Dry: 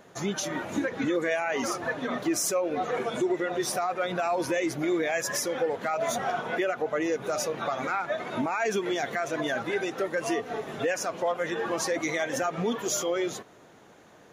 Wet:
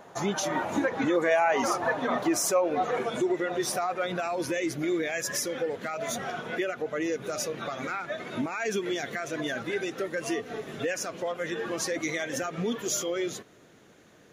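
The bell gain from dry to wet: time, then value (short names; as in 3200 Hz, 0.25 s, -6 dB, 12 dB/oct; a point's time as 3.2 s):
bell 860 Hz 1.1 oct
2.46 s +8.5 dB
3.13 s -1 dB
3.93 s -1 dB
4.51 s -8.5 dB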